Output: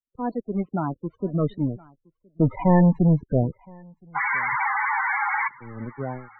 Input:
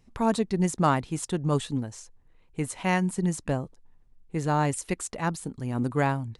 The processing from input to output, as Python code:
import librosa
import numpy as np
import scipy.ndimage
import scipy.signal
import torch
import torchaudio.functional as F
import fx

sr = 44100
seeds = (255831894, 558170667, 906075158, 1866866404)

y = fx.doppler_pass(x, sr, speed_mps=26, closest_m=7.8, pass_at_s=2.63)
y = fx.spec_paint(y, sr, seeds[0], shape='noise', start_s=4.15, length_s=1.33, low_hz=760.0, high_hz=2300.0, level_db=-25.0)
y = fx.leveller(y, sr, passes=5)
y = fx.air_absorb(y, sr, metres=250.0)
y = fx.spec_topn(y, sr, count=16)
y = y + 10.0 ** (-22.0 / 20.0) * np.pad(y, (int(1018 * sr / 1000.0), 0))[:len(y)]
y = fx.dynamic_eq(y, sr, hz=1300.0, q=6.3, threshold_db=-39.0, ratio=4.0, max_db=-7)
y = fx.env_lowpass_down(y, sr, base_hz=2100.0, full_db=-16.0)
y = fx.band_widen(y, sr, depth_pct=40)
y = y * librosa.db_to_amplitude(-1.0)